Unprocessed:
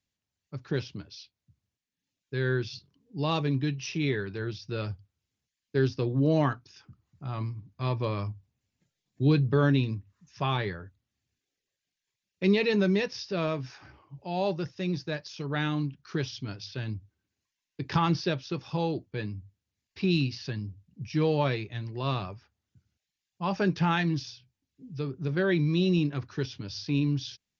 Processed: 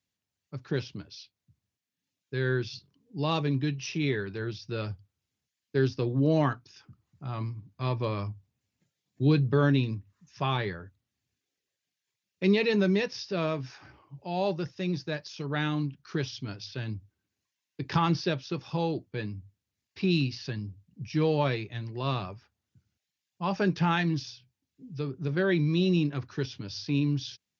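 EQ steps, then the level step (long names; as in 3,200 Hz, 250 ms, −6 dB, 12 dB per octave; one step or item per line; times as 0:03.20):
high-pass filter 77 Hz
0.0 dB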